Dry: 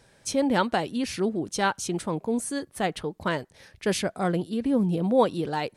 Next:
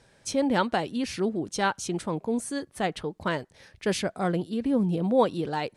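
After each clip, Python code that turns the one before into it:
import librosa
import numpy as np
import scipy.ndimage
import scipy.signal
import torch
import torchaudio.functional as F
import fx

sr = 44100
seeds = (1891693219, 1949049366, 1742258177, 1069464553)

y = scipy.signal.sosfilt(scipy.signal.bessel(2, 9700.0, 'lowpass', norm='mag', fs=sr, output='sos'), x)
y = F.gain(torch.from_numpy(y), -1.0).numpy()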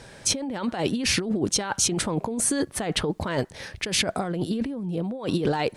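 y = fx.over_compress(x, sr, threshold_db=-34.0, ratio=-1.0)
y = F.gain(torch.from_numpy(y), 7.5).numpy()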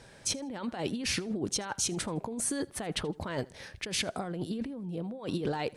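y = fx.echo_feedback(x, sr, ms=80, feedback_pct=29, wet_db=-24)
y = F.gain(torch.from_numpy(y), -8.0).numpy()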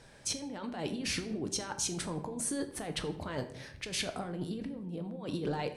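y = fx.room_shoebox(x, sr, seeds[0], volume_m3=130.0, walls='mixed', distance_m=0.39)
y = F.gain(torch.from_numpy(y), -3.5).numpy()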